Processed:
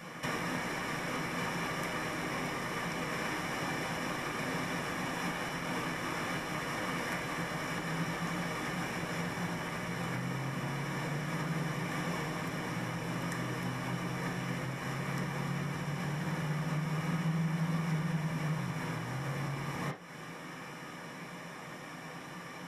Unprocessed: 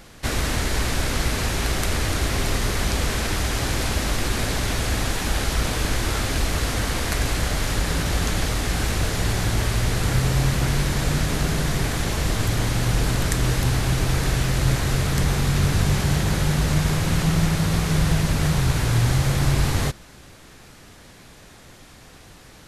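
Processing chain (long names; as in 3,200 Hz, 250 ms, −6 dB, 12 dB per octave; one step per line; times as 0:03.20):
parametric band 160 Hz +4.5 dB 0.72 octaves
downward compressor 6 to 1, threshold −32 dBFS, peak gain reduction 18.5 dB
convolution reverb RT60 0.45 s, pre-delay 3 ms, DRR −3.5 dB
level −6.5 dB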